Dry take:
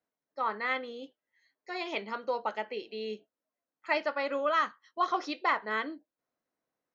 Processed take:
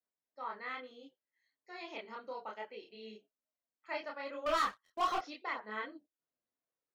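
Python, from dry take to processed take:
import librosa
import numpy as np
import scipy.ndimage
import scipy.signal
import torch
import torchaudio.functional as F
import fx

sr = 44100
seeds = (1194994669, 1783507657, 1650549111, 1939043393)

y = fx.leveller(x, sr, passes=3, at=(4.46, 5.18))
y = fx.chorus_voices(y, sr, voices=4, hz=0.64, base_ms=28, depth_ms=4.3, mix_pct=50)
y = y * librosa.db_to_amplitude(-7.0)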